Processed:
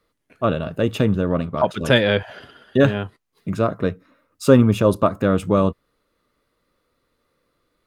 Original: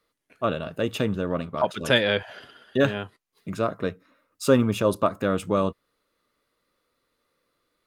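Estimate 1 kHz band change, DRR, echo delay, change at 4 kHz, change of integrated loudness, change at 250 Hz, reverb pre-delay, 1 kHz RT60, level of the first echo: +4.0 dB, no reverb, no echo, +1.5 dB, +5.5 dB, +7.0 dB, no reverb, no reverb, no echo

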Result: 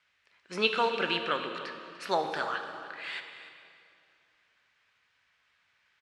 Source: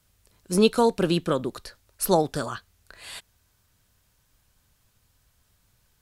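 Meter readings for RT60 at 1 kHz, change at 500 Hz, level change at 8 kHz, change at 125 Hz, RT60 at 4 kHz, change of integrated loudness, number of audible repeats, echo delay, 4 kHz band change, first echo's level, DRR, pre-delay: 2.4 s, -9.0 dB, -19.0 dB, -18.0 dB, 2.0 s, -7.5 dB, 1, 295 ms, 0.0 dB, -15.5 dB, 5.0 dB, 18 ms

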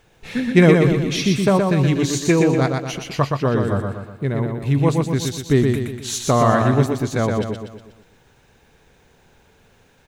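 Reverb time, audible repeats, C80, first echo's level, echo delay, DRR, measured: no reverb, 5, no reverb, -4.0 dB, 121 ms, no reverb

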